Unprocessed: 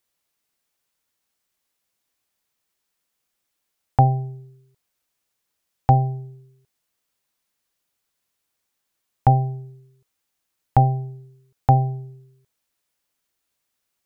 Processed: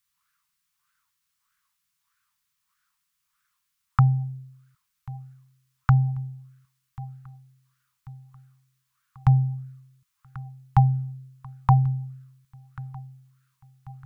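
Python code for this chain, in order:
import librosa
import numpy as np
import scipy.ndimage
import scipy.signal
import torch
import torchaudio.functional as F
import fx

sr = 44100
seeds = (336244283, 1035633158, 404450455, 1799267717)

y = scipy.signal.sosfilt(scipy.signal.ellip(3, 1.0, 40, [180.0, 1100.0], 'bandstop', fs=sr, output='sos'), x)
y = fx.echo_feedback(y, sr, ms=1089, feedback_pct=50, wet_db=-19.0)
y = fx.bell_lfo(y, sr, hz=1.6, low_hz=420.0, high_hz=1500.0, db=17)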